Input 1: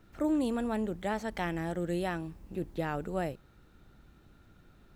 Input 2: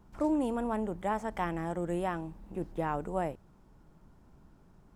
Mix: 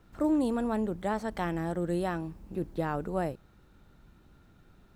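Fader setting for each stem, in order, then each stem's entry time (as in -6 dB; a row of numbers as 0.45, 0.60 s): -1.0, -6.0 dB; 0.00, 0.00 s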